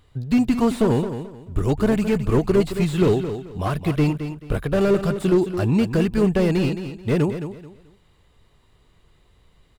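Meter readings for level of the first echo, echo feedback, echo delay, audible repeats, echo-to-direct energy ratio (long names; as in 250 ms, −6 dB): −10.0 dB, 26%, 217 ms, 3, −9.5 dB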